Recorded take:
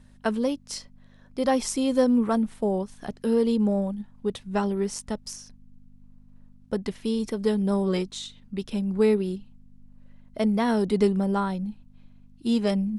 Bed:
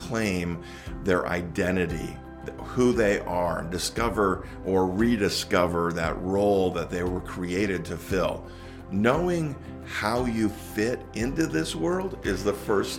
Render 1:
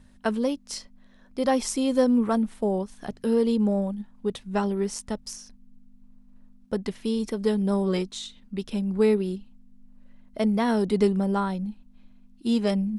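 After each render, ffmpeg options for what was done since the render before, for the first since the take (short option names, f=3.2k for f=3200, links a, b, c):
-af "bandreject=f=50:t=h:w=4,bandreject=f=100:t=h:w=4,bandreject=f=150:t=h:w=4"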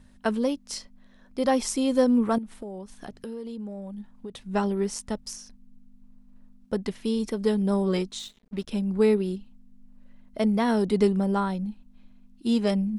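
-filter_complex "[0:a]asettb=1/sr,asplit=3[a][b][c];[a]atrim=end=2.384[d];[b]atrim=start=2.38:end=4.49,asetpts=PTS-STARTPTS,afade=t=in:d=0.004:c=qsin,afade=t=out:st=2.106:d=0.004:c=qsin,acompressor=threshold=-34dB:ratio=6:attack=3.2:release=140:knee=1:detection=peak[e];[c]atrim=start=4.486[f];[d][e]acrossfade=d=0.004:c1=hsin:c2=qsin[g];[g][f]acrossfade=d=0.004:c1=qsin:c2=hsin,asettb=1/sr,asplit=3[h][i][j];[h]atrim=end=8.194[k];[i]atrim=start=8.19:end=8.67,asetpts=PTS-STARTPTS,afade=t=in:d=0.004:c=qsin,afade=t=out:st=0.476:d=0.004:c=qsin,aeval=exprs='sgn(val(0))*max(abs(val(0))-0.00335,0)':c=same[l];[j]atrim=start=8.666[m];[k][l]acrossfade=d=0.004:c1=hsin:c2=qsin[n];[n][m]acrossfade=d=0.004:c1=qsin:c2=hsin"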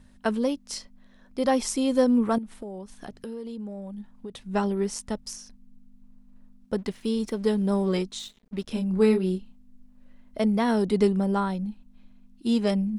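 -filter_complex "[0:a]asettb=1/sr,asplit=3[a][b][c];[a]atrim=end=6.784[d];[b]atrim=start=6.78:end=7.94,asetpts=PTS-STARTPTS,afade=t=in:d=0.004:c=qsin,afade=t=out:st=1.156:d=0.004:c=qsin,aeval=exprs='sgn(val(0))*max(abs(val(0))-0.00168,0)':c=same[e];[c]atrim=start=7.936[f];[d][e]acrossfade=d=0.004:c1=hsin:c2=qsin[g];[g][f]acrossfade=d=0.004:c1=qsin:c2=hsin,asettb=1/sr,asplit=3[h][i][j];[h]atrim=end=8.634[k];[i]atrim=start=8.63:end=10.4,asetpts=PTS-STARTPTS,afade=t=in:d=0.004:c=qsin,afade=t=out:st=1.766:d=0.004:c=qsin,asplit=2[l][m];[m]adelay=27,volume=-5dB[n];[l][n]amix=inputs=2:normalize=0,atrim=end_sample=78057[o];[j]atrim=start=10.396[p];[k][o]acrossfade=d=0.004:c1=hsin:c2=qsin[q];[q][p]acrossfade=d=0.004:c1=qsin:c2=hsin"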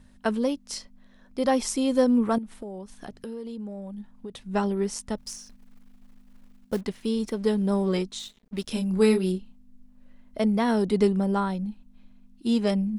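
-filter_complex "[0:a]asettb=1/sr,asplit=3[a][b][c];[a]atrim=end=5.184[d];[b]atrim=start=5.18:end=6.81,asetpts=PTS-STARTPTS,afade=t=in:d=0.004:c=qsin,afade=t=out:st=1.626:d=0.004:c=qsin,acrusher=bits=5:mode=log:mix=0:aa=0.000001[e];[c]atrim=start=6.806[f];[d][e]acrossfade=d=0.004:c1=hsin:c2=qsin[g];[g][f]acrossfade=d=0.004:c1=qsin:c2=hsin,asplit=3[h][i][j];[h]afade=t=out:st=8.54:d=0.02[k];[i]highshelf=f=3.3k:g=9.5,afade=t=in:st=8.54:d=0.02,afade=t=out:st=9.31:d=0.02[l];[j]afade=t=in:st=9.31:d=0.02[m];[k][l][m]amix=inputs=3:normalize=0"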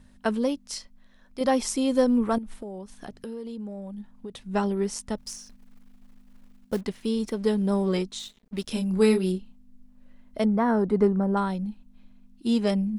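-filter_complex "[0:a]asettb=1/sr,asplit=3[a][b][c];[a]atrim=end=0.674[d];[b]atrim=start=0.67:end=1.41,asetpts=PTS-STARTPTS,afade=t=in:d=0.004:c=qsin,afade=t=out:st=0.736:d=0.004:c=qsin,equalizer=f=240:w=0.36:g=-6[e];[c]atrim=start=1.406[f];[d][e]acrossfade=d=0.004:c1=hsin:c2=qsin[g];[g][f]acrossfade=d=0.004:c1=qsin:c2=hsin,asplit=3[h][i][j];[h]afade=t=out:st=1.99:d=0.02[k];[i]asubboost=boost=5:cutoff=53,afade=t=in:st=1.99:d=0.02,afade=t=out:st=2.54:d=0.02[l];[j]afade=t=in:st=2.54:d=0.02[m];[k][l][m]amix=inputs=3:normalize=0,asettb=1/sr,asplit=3[n][o][p];[n]atrim=end=10.454[q];[o]atrim=start=10.45:end=11.37,asetpts=PTS-STARTPTS,afade=t=in:d=0.004:c=qsin,afade=t=out:st=0.916:d=0.004:c=qsin,highshelf=f=2.1k:t=q:w=1.5:g=-13[r];[p]atrim=start=11.366[s];[q][r]acrossfade=d=0.004:c1=hsin:c2=qsin[t];[t][s]acrossfade=d=0.004:c1=qsin:c2=hsin"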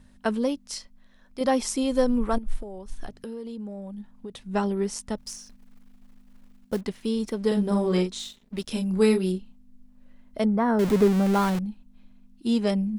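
-filter_complex "[0:a]asplit=3[a][b][c];[a]afade=t=out:st=1.82:d=0.02[d];[b]asubboost=boost=11.5:cutoff=51,afade=t=in:st=1.82:d=0.02,afade=t=out:st=3.09:d=0.02[e];[c]afade=t=in:st=3.09:d=0.02[f];[d][e][f]amix=inputs=3:normalize=0,asettb=1/sr,asplit=3[g][h][i];[g]atrim=end=7.474[j];[h]atrim=start=7.47:end=8.6,asetpts=PTS-STARTPTS,afade=t=in:d=0.004:c=qsin,afade=t=out:st=1.126:d=0.004:c=qsin,asplit=2[k][l];[l]adelay=44,volume=-4dB[m];[k][m]amix=inputs=2:normalize=0,atrim=end_sample=49833[n];[i]atrim=start=8.596[o];[j][n]acrossfade=d=0.004:c1=hsin:c2=qsin[p];[p][o]acrossfade=d=0.004:c1=qsin:c2=hsin,asettb=1/sr,asplit=3[q][r][s];[q]atrim=end=10.794[t];[r]atrim=start=10.79:end=11.59,asetpts=PTS-STARTPTS,afade=t=in:d=0.004:c=qsin,afade=t=out:st=0.796:d=0.004:c=qsin,aeval=exprs='val(0)+0.5*0.0562*sgn(val(0))':c=same[u];[s]atrim=start=11.586[v];[t][u]acrossfade=d=0.004:c1=hsin:c2=qsin[w];[w][v]acrossfade=d=0.004:c1=qsin:c2=hsin"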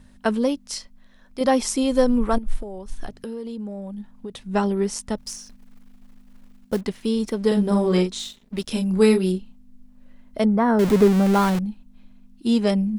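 -af "volume=4dB"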